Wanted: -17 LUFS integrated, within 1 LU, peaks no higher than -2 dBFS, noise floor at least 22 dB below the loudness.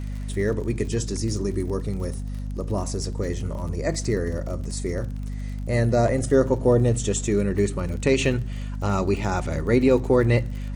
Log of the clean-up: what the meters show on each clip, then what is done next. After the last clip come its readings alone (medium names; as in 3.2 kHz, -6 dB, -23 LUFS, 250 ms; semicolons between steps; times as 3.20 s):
tick rate 42 per s; hum 50 Hz; highest harmonic 250 Hz; hum level -28 dBFS; loudness -24.5 LUFS; peak level -7.5 dBFS; loudness target -17.0 LUFS
-> de-click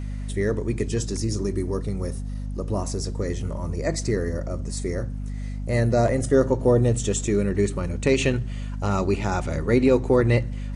tick rate 0 per s; hum 50 Hz; highest harmonic 250 Hz; hum level -28 dBFS
-> de-hum 50 Hz, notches 5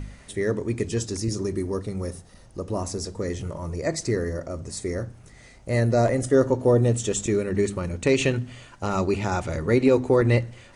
hum not found; loudness -24.5 LUFS; peak level -8.0 dBFS; loudness target -17.0 LUFS
-> trim +7.5 dB; peak limiter -2 dBFS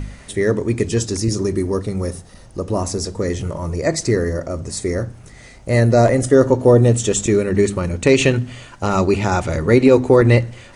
loudness -17.5 LUFS; peak level -2.0 dBFS; noise floor -42 dBFS